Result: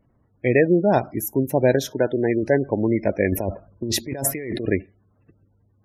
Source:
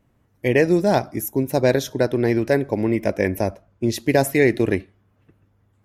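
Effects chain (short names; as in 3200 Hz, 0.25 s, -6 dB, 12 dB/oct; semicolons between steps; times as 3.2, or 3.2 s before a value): spectral gate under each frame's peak -25 dB strong; 1.86–2.43 low shelf 130 Hz -10 dB; 3.32–4.66 negative-ratio compressor -26 dBFS, ratio -1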